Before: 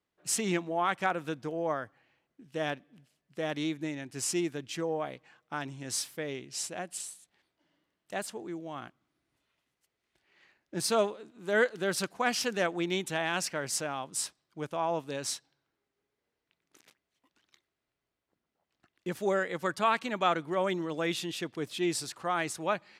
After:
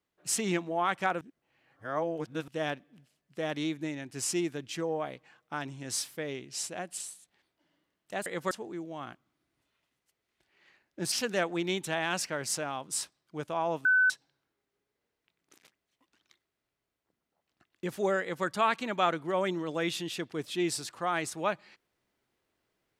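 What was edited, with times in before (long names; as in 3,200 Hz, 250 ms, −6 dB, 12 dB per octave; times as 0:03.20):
0:01.21–0:02.48: reverse
0:10.87–0:12.35: remove
0:15.08–0:15.33: beep over 1,510 Hz −20 dBFS
0:19.44–0:19.69: duplicate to 0:08.26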